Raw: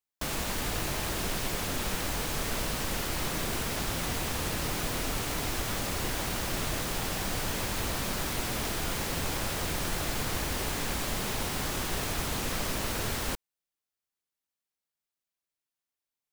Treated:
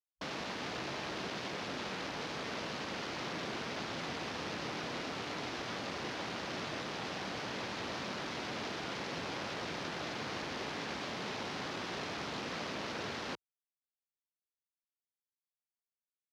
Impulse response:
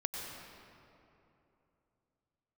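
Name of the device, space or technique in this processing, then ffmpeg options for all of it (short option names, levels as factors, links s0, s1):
over-cleaned archive recording: -af "highpass=180,lowpass=7000,afwtdn=0.00891,volume=0.596"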